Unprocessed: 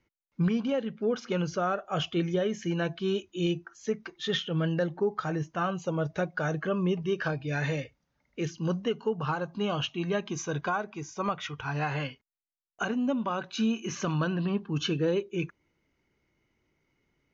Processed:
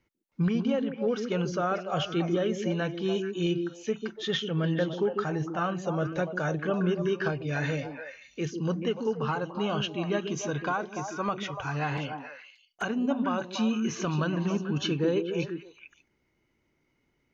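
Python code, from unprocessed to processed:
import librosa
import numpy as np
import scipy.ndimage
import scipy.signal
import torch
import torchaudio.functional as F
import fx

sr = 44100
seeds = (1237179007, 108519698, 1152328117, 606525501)

y = fx.env_flanger(x, sr, rest_ms=6.2, full_db=-29.5, at=(11.97, 12.82))
y = fx.echo_stepped(y, sr, ms=145, hz=280.0, octaves=1.4, feedback_pct=70, wet_db=-2)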